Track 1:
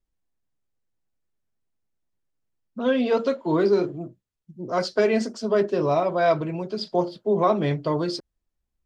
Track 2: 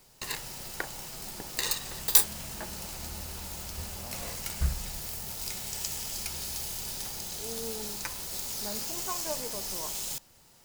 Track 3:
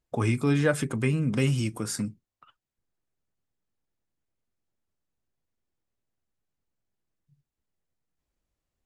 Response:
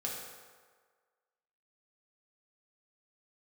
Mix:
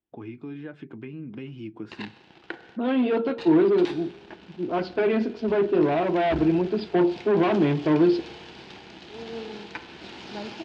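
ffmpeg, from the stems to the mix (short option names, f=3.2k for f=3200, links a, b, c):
-filter_complex "[0:a]volume=-2.5dB,asplit=2[a][b];[b]volume=-19.5dB[c];[1:a]aeval=exprs='sgn(val(0))*max(abs(val(0))-0.0119,0)':c=same,adelay=1700,volume=1dB,asplit=3[d][e][f];[d]atrim=end=2.77,asetpts=PTS-STARTPTS,afade=t=out:st=2.766:d=0.004:c=hsin[g];[e]atrim=start=2.77:end=3.38,asetpts=PTS-STARTPTS,volume=0[h];[f]atrim=start=3.38,asetpts=PTS-STARTPTS,afade=t=in:d=0.004:c=hsin[i];[g][h][i]concat=n=3:v=0:a=1,asplit=2[j][k];[k]volume=-12.5dB[l];[2:a]acompressor=threshold=-31dB:ratio=2.5,volume=-7.5dB[m];[3:a]atrim=start_sample=2205[n];[c][l]amix=inputs=2:normalize=0[o];[o][n]afir=irnorm=-1:irlink=0[p];[a][j][m][p]amix=inputs=4:normalize=0,dynaudnorm=f=410:g=9:m=11dB,asoftclip=type=hard:threshold=-18.5dB,highpass=120,equalizer=f=130:t=q:w=4:g=-4,equalizer=f=330:t=q:w=4:g=9,equalizer=f=540:t=q:w=4:g=-7,equalizer=f=1.2k:t=q:w=4:g=-7,equalizer=f=2k:t=q:w=4:g=-4,lowpass=f=3.2k:w=0.5412,lowpass=f=3.2k:w=1.3066"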